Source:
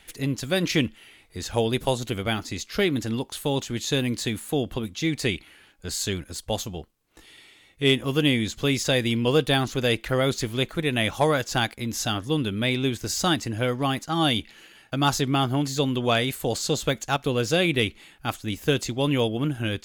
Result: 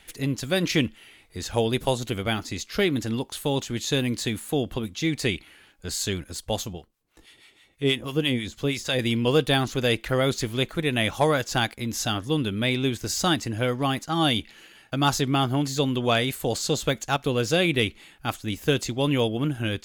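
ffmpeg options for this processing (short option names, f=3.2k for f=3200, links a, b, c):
-filter_complex "[0:a]asettb=1/sr,asplit=3[a][b][c];[a]atrim=end=6.734[d];[b]atrim=start=6.73:end=8.99,asetpts=PTS-STARTPTS,afade=t=in:d=0.004:c=qsin,afade=t=out:st=2.256:d=0.004:c=qsin,acrossover=split=800[e][f];[e]aeval=exprs='val(0)*(1-0.7/2+0.7/2*cos(2*PI*6.2*n/s))':c=same[g];[f]aeval=exprs='val(0)*(1-0.7/2-0.7/2*cos(2*PI*6.2*n/s))':c=same[h];[g][h]amix=inputs=2:normalize=0[i];[c]atrim=start=8.986[j];[d][i]acrossfade=d=0.004:c1=hsin:c2=qsin[k];[k][j]acrossfade=d=0.004:c1=qsin:c2=hsin"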